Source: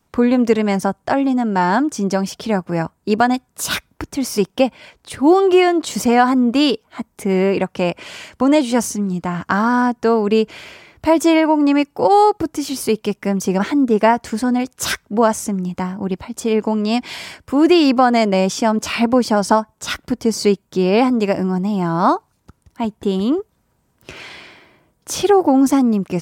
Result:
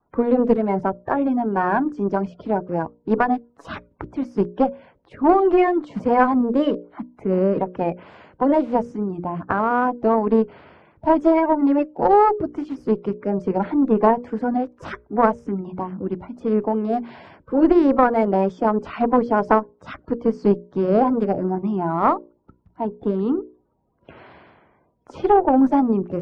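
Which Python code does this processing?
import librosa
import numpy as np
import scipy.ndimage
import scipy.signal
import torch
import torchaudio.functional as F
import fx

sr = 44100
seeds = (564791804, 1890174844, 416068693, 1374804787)

y = fx.spec_quant(x, sr, step_db=30)
y = fx.cheby_harmonics(y, sr, harmonics=(2, 4, 7), levels_db=(-7, -22, -29), full_scale_db=-1.5)
y = scipy.signal.sosfilt(scipy.signal.butter(2, 1200.0, 'lowpass', fs=sr, output='sos'), y)
y = fx.hum_notches(y, sr, base_hz=60, count=10)
y = fx.wow_flutter(y, sr, seeds[0], rate_hz=2.1, depth_cents=36.0)
y = y * 10.0 ** (-1.0 / 20.0)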